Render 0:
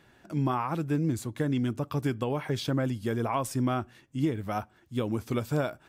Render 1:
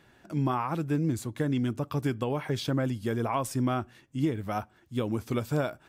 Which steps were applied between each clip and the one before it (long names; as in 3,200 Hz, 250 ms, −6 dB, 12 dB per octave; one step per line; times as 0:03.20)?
no processing that can be heard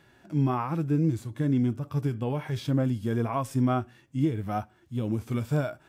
harmonic and percussive parts rebalanced percussive −14 dB
level +4 dB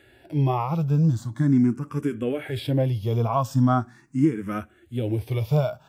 frequency shifter mixed with the dry sound +0.41 Hz
level +7 dB